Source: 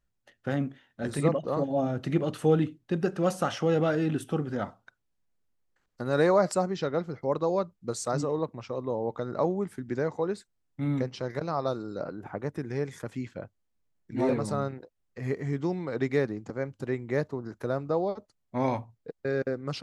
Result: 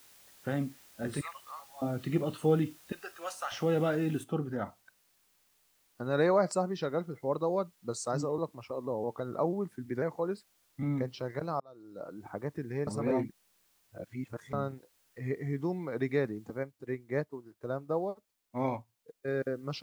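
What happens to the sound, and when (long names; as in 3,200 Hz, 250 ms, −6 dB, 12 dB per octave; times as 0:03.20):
0:01.21–0:01.82: high-pass filter 1,100 Hz 24 dB per octave
0:02.92–0:03.52: high-pass filter 1,000 Hz
0:04.24: noise floor change −47 dB −59 dB
0:08.38–0:10.83: pitch modulation by a square or saw wave saw down 6.1 Hz, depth 100 cents
0:11.60–0:12.26: fade in
0:12.87–0:14.53: reverse
0:16.63–0:19.28: expander for the loud parts, over −47 dBFS
whole clip: noise reduction from a noise print of the clip's start 8 dB; level −3.5 dB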